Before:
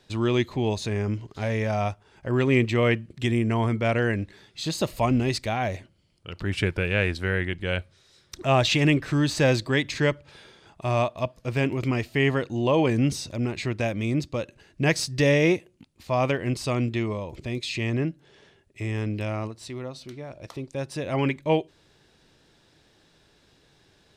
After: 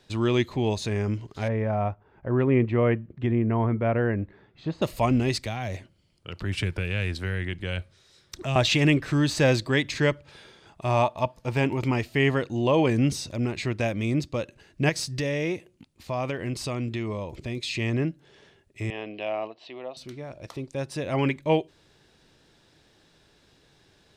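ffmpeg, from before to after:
-filter_complex "[0:a]asettb=1/sr,asplit=3[a][b][c];[a]atrim=end=1.484[d];[b]atrim=start=1.48:end=4.82,asetpts=PTS-STARTPTS,afade=t=in:d=0.004:c=qsin,afade=t=out:st=3.336:d=0.004:c=qsin,lowpass=1.4k[e];[c]atrim=start=4.816[f];[d][e]acrossfade=d=0.004:c1=hsin:c2=qsin[g];[g][f]acrossfade=d=0.004:c1=qsin:c2=hsin,asettb=1/sr,asplit=3[h][i][j];[h]atrim=end=5.384[k];[i]atrim=start=5.38:end=8.56,asetpts=PTS-STARTPTS,afade=t=in:d=0.004:c=qsin,afade=t=out:st=3.176:d=0.004:c=qsin,acrossover=split=170|3000[l][m][n];[m]acompressor=threshold=-30dB:ratio=6:attack=3.2:release=140:knee=2.83:detection=peak[o];[l][o][n]amix=inputs=3:normalize=0[p];[j]atrim=start=8.556[q];[k][p]acrossfade=d=0.004:c1=hsin:c2=qsin[r];[r][q]acrossfade=d=0.004:c1=qsin:c2=hsin,asettb=1/sr,asplit=3[s][t][u];[s]atrim=end=10.894[v];[t]atrim=start=10.89:end=11.99,asetpts=PTS-STARTPTS,afade=t=in:d=0.004:c=qsin,afade=t=out:st=1.096:d=0.004:c=qsin,equalizer=f=880:w=6.7:g=12[w];[u]atrim=start=11.986[x];[v][w]acrossfade=d=0.004:c1=hsin:c2=qsin[y];[y][x]acrossfade=d=0.004:c1=qsin:c2=hsin,asettb=1/sr,asplit=3[z][aa][ab];[z]atrim=end=14.894[ac];[aa]atrim=start=14.89:end=17.64,asetpts=PTS-STARTPTS,afade=t=in:d=0.004:c=qsin,afade=t=out:st=2.746:d=0.004:c=qsin,acompressor=threshold=-27dB:ratio=2.5:attack=3.2:release=140:knee=1:detection=peak[ad];[ab]atrim=start=17.636[ae];[ac][ad]acrossfade=d=0.004:c1=hsin:c2=qsin[af];[af][ae]acrossfade=d=0.004:c1=qsin:c2=hsin,asettb=1/sr,asplit=3[ag][ah][ai];[ag]atrim=end=18.904[aj];[ah]atrim=start=18.9:end=19.97,asetpts=PTS-STARTPTS,afade=t=in:d=0.004:c=qsin,afade=t=out:st=1.066:d=0.004:c=qsin,highpass=420,equalizer=f=690:t=q:w=4:g=9,equalizer=f=1.4k:t=q:w=4:g=-8,equalizer=f=2k:t=q:w=4:g=-3,equalizer=f=2.9k:t=q:w=4:g=6,lowpass=f=3.7k:w=0.5412,lowpass=f=3.7k:w=1.3066[ak];[ai]atrim=start=19.966[al];[aj][ak]acrossfade=d=0.004:c1=hsin:c2=qsin[am];[am][al]acrossfade=d=0.004:c1=qsin:c2=hsin"

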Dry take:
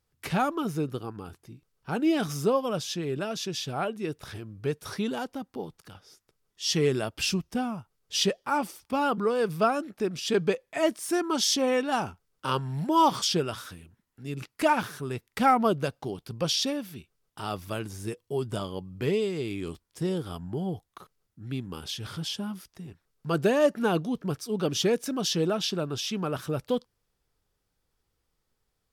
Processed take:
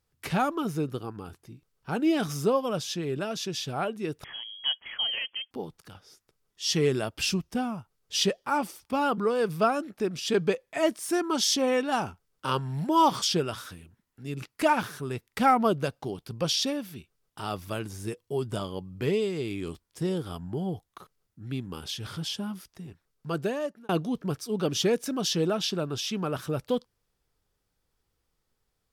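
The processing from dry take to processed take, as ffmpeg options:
-filter_complex "[0:a]asettb=1/sr,asplit=3[a][b][c];[a]atrim=end=4.244[d];[b]atrim=start=4.24:end=5.51,asetpts=PTS-STARTPTS,afade=t=in:d=0.004:c=qsin,afade=t=out:st=1.266:d=0.004:c=qsin,lowpass=f=2.9k:t=q:w=0.5098,lowpass=f=2.9k:t=q:w=0.6013,lowpass=f=2.9k:t=q:w=0.9,lowpass=f=2.9k:t=q:w=2.563,afreqshift=-3400[e];[c]atrim=start=5.506[f];[d][e]acrossfade=d=0.004:c1=hsin:c2=qsin[g];[g][f]acrossfade=d=0.004:c1=qsin:c2=hsin,asplit=2[h][i];[h]atrim=end=23.89,asetpts=PTS-STARTPTS,afade=t=out:st=22.66:d=1.23:c=qsin[j];[i]atrim=start=23.89,asetpts=PTS-STARTPTS,afade=t=in:d=0.004:c=hsin[k];[j][k]concat=n=2:v=0:a=1"

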